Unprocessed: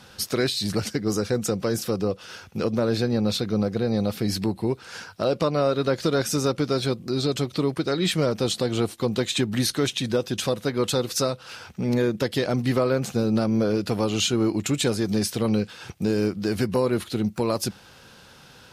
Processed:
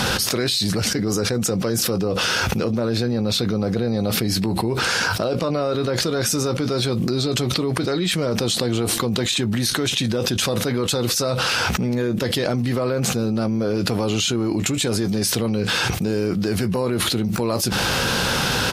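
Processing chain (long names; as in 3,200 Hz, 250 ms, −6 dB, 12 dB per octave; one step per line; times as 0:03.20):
double-tracking delay 17 ms −13 dB
envelope flattener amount 100%
level −2.5 dB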